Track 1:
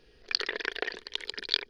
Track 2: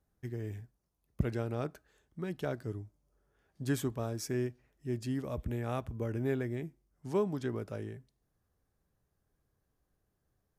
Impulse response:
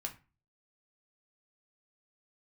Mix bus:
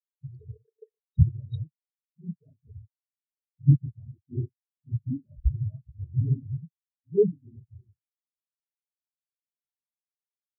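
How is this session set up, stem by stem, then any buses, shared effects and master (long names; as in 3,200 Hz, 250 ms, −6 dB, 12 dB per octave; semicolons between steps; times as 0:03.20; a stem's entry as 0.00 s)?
−6.5 dB, 0.00 s, no send, hollow resonant body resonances 450/920/3,800 Hz, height 16 dB, ringing for 35 ms
+1.0 dB, 0.00 s, no send, random phases in long frames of 50 ms; low-shelf EQ 220 Hz +12 dB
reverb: not used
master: every bin expanded away from the loudest bin 4 to 1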